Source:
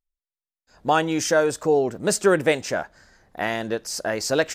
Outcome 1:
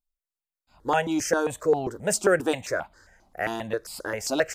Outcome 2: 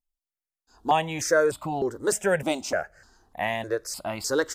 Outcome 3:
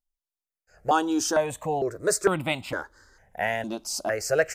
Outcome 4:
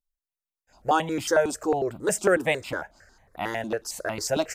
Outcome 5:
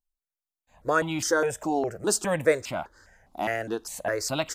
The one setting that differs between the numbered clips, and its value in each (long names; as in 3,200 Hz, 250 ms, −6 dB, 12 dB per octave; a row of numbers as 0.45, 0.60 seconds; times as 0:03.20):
step-sequenced phaser, speed: 7.5, 3.3, 2.2, 11, 4.9 Hertz